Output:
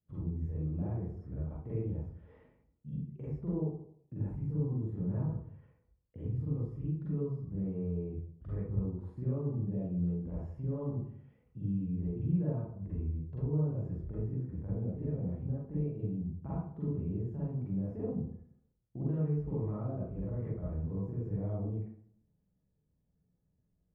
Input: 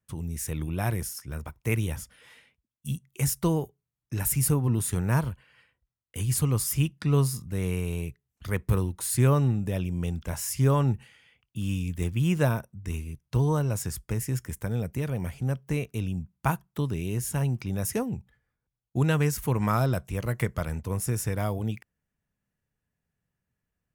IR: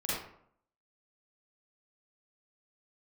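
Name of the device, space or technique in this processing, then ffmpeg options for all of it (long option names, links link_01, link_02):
television next door: -filter_complex "[0:a]acompressor=threshold=-42dB:ratio=3,lowpass=500[link_01];[1:a]atrim=start_sample=2205[link_02];[link_01][link_02]afir=irnorm=-1:irlink=0"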